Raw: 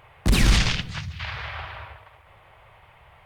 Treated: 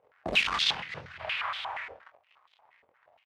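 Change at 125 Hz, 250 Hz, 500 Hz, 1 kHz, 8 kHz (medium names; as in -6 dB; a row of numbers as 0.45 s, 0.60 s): -24.5 dB, -17.5 dB, -3.5 dB, 0.0 dB, -13.0 dB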